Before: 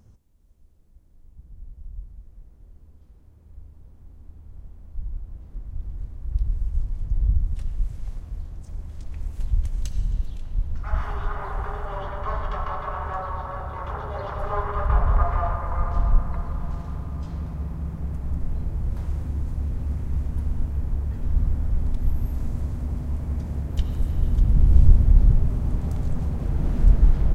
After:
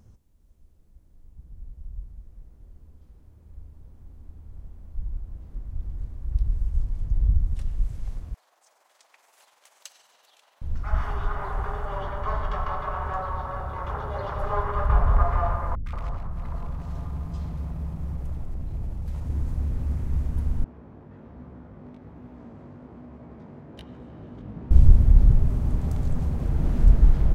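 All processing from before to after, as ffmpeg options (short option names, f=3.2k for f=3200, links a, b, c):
-filter_complex "[0:a]asettb=1/sr,asplit=3[a][b][c];[a]atrim=end=8.344[d];[b]atrim=start=8.34:end=10.62,asetpts=PTS-STARTPTS,afade=t=in:d=0.004:c=qsin,afade=t=out:st=2.276:d=0.004:c=qsin,highpass=f=670:w=0.5412,highpass=f=670:w=1.3066,tremolo=f=21:d=0.462[e];[c]atrim=start=10.616[f];[d][e]acrossfade=d=0.004:c1=hsin:c2=qsin[g];[g][f]acrossfade=d=0.004:c1=qsin:c2=hsin,asettb=1/sr,asplit=3[h][i][j];[h]atrim=end=15.754[k];[i]atrim=start=15.75:end=19.3,asetpts=PTS-STARTPTS,afade=t=in:d=0.004:c=qsin,afade=t=out:st=3.546:d=0.004:c=qsin,acompressor=threshold=-26dB:ratio=3:attack=3.2:release=140:knee=1:detection=peak,aeval=exprs='0.0596*(abs(mod(val(0)/0.0596+3,4)-2)-1)':c=same,acrossover=split=310|1500[l][m][n];[n]adelay=110[o];[m]adelay=180[p];[l][p][o]amix=inputs=3:normalize=0,atrim=end_sample=156555[q];[j]atrim=start=19.296[r];[k][q]acrossfade=d=0.004:c1=hsin:c2=qsin[s];[s][r]acrossfade=d=0.004:c1=qsin:c2=hsin,asettb=1/sr,asplit=3[t][u][v];[t]atrim=end=20.644[w];[u]atrim=start=20.64:end=24.71,asetpts=PTS-STARTPTS,afade=t=in:d=0.004:c=qsin,afade=t=out:st=4.066:d=0.004:c=qsin,highpass=240,adynamicsmooth=sensitivity=7.5:basefreq=1.7k,flanger=delay=16:depth=4.2:speed=1.2[x];[v]atrim=start=24.706[y];[w][x]acrossfade=d=0.004:c1=hsin:c2=qsin[z];[z][y]acrossfade=d=0.004:c1=qsin:c2=hsin"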